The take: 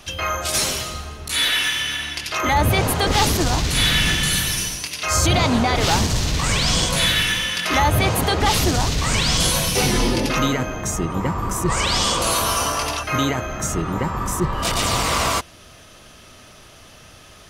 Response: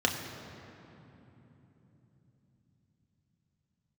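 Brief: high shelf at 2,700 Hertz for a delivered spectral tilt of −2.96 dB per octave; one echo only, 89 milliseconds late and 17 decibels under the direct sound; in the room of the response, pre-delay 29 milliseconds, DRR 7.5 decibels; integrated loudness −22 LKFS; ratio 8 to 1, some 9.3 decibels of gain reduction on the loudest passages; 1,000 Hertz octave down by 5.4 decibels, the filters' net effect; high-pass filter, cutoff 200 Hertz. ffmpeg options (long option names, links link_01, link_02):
-filter_complex "[0:a]highpass=200,equalizer=frequency=1000:width_type=o:gain=-6,highshelf=frequency=2700:gain=-6.5,acompressor=threshold=-28dB:ratio=8,aecho=1:1:89:0.141,asplit=2[link_01][link_02];[1:a]atrim=start_sample=2205,adelay=29[link_03];[link_02][link_03]afir=irnorm=-1:irlink=0,volume=-18dB[link_04];[link_01][link_04]amix=inputs=2:normalize=0,volume=8dB"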